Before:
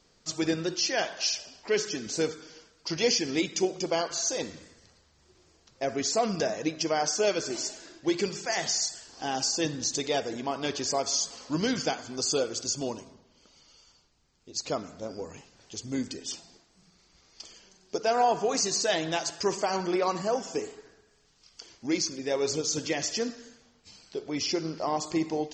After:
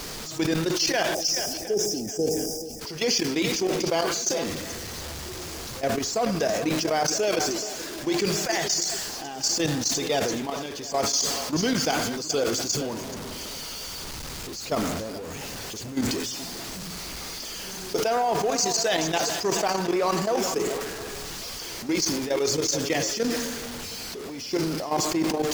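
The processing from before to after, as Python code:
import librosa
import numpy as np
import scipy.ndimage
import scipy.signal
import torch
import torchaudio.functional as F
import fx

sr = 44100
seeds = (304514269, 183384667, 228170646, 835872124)

p1 = x + 0.5 * 10.0 ** (-32.5 / 20.0) * np.sign(x)
p2 = fx.spec_erase(p1, sr, start_s=1.14, length_s=1.66, low_hz=840.0, high_hz=4800.0)
p3 = fx.level_steps(p2, sr, step_db=13)
p4 = p3 + fx.echo_swing(p3, sr, ms=714, ratio=1.5, feedback_pct=35, wet_db=-15.5, dry=0)
p5 = fx.sustainer(p4, sr, db_per_s=31.0)
y = p5 * 10.0 ** (3.0 / 20.0)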